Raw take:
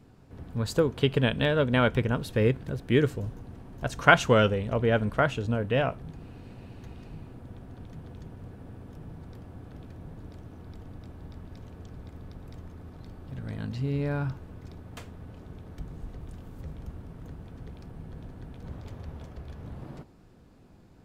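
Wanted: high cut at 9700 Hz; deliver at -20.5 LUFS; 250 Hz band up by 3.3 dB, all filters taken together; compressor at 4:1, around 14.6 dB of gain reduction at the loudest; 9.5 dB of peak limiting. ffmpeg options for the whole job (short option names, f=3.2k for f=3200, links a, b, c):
-af "lowpass=9.7k,equalizer=f=250:t=o:g=4,acompressor=threshold=-29dB:ratio=4,volume=18.5dB,alimiter=limit=-6dB:level=0:latency=1"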